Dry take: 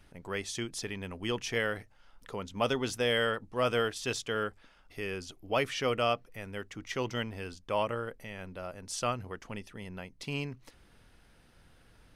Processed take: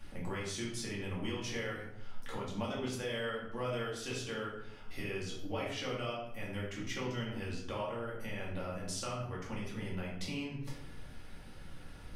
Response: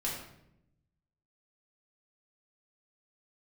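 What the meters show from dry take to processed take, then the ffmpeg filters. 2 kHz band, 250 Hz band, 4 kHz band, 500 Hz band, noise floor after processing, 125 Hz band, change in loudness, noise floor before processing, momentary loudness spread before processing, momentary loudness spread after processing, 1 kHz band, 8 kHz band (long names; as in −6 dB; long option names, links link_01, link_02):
−6.5 dB, −1.5 dB, −6.0 dB, −7.0 dB, −48 dBFS, −0.5 dB, −5.5 dB, −62 dBFS, 14 LU, 12 LU, −7.5 dB, −3.5 dB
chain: -filter_complex "[0:a]acompressor=threshold=-46dB:ratio=4[link_01];[1:a]atrim=start_sample=2205,asetrate=48510,aresample=44100[link_02];[link_01][link_02]afir=irnorm=-1:irlink=0,volume=4.5dB"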